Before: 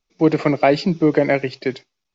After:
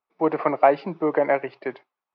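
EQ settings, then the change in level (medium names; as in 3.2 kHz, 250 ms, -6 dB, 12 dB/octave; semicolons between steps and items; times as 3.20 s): band-pass filter 990 Hz, Q 1.8; distance through air 250 m; +5.5 dB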